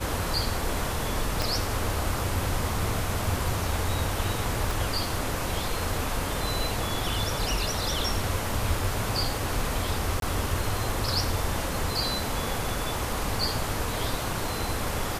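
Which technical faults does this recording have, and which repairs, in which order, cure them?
1.42 s: pop
4.71 s: pop
10.20–10.22 s: dropout 22 ms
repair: de-click; interpolate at 10.20 s, 22 ms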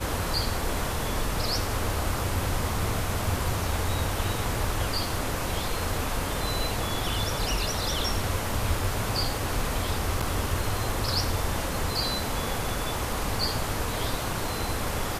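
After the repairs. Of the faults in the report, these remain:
1.42 s: pop

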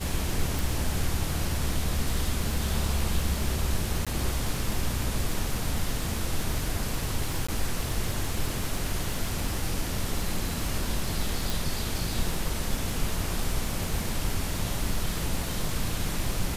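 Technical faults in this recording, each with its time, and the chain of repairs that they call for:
crackle 56 per s -31 dBFS
0.59 s: pop
4.05–4.07 s: dropout 16 ms
7.47–7.49 s: dropout 15 ms
11.50 s: pop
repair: de-click; interpolate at 4.05 s, 16 ms; interpolate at 7.47 s, 15 ms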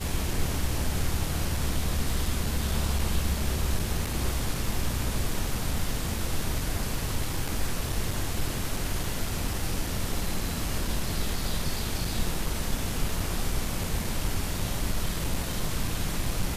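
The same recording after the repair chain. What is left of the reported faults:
nothing left

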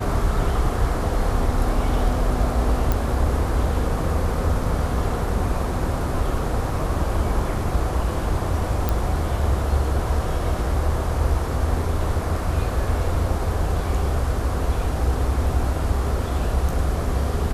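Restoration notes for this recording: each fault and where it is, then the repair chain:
2.92 s: pop
8.89 s: pop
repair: de-click

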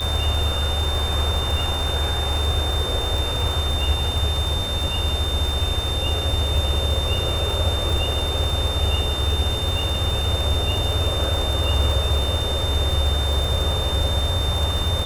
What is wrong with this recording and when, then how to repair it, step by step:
crackle 45 per s -24 dBFS
whine 3.6 kHz -26 dBFS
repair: de-click; band-stop 3.6 kHz, Q 30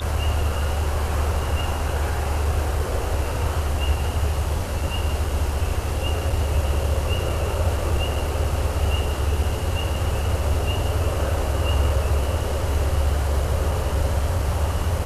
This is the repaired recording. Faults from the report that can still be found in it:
nothing left

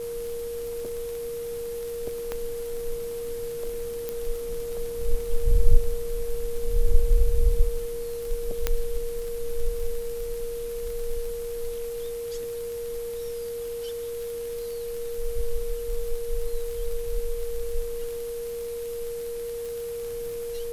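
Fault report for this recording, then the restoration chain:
crackle 35 per s -32 dBFS
whine 470 Hz -30 dBFS
2.32 s: pop -16 dBFS
4.09 s: pop -16 dBFS
8.67 s: pop -8 dBFS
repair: de-click; band-stop 470 Hz, Q 30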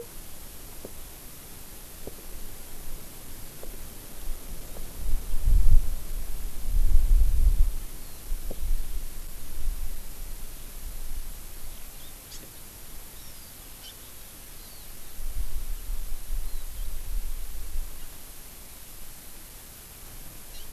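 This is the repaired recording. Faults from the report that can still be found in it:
nothing left

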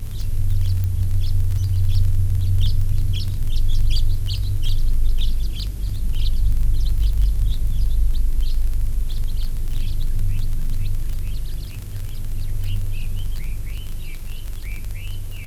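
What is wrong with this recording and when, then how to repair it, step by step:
crackle 26 per s -24 dBFS
0.84 s: pop -14 dBFS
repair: de-click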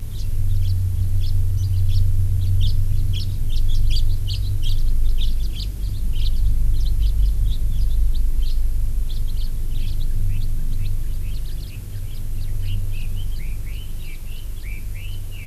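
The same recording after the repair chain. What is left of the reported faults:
nothing left

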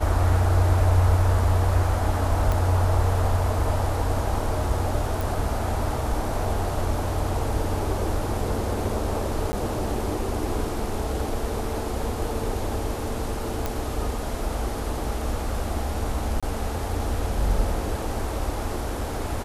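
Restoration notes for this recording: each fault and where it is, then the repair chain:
2.52 s: pop
5.21 s: pop
9.52–9.53 s: dropout 10 ms
13.66 s: pop
16.40–16.43 s: dropout 26 ms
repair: de-click; interpolate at 9.52 s, 10 ms; interpolate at 16.40 s, 26 ms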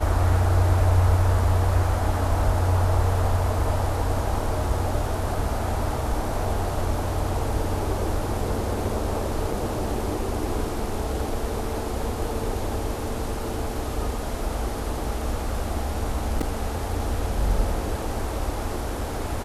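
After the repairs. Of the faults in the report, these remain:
nothing left

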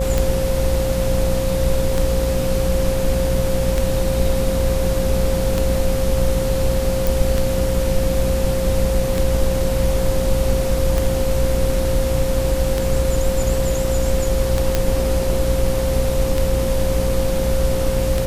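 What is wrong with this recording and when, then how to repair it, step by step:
buzz 60 Hz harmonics 17 -23 dBFS
tick 33 1/3 rpm
whine 530 Hz -21 dBFS
7.07 s: pop
14.75 s: pop -3 dBFS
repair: de-click; de-hum 60 Hz, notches 17; band-stop 530 Hz, Q 30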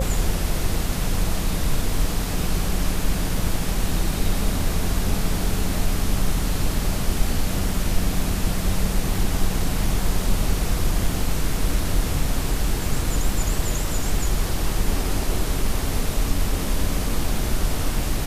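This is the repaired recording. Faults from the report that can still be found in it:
nothing left

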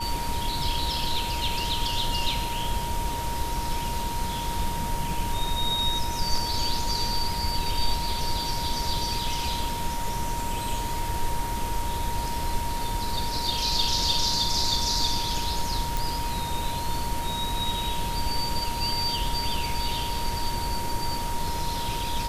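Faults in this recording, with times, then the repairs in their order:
whine 940 Hz -31 dBFS
15.97 s: pop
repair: de-click; band-stop 940 Hz, Q 30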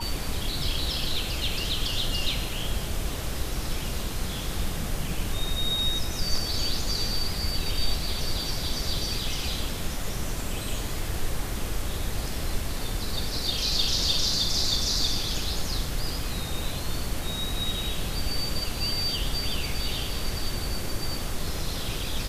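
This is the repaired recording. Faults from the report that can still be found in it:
nothing left

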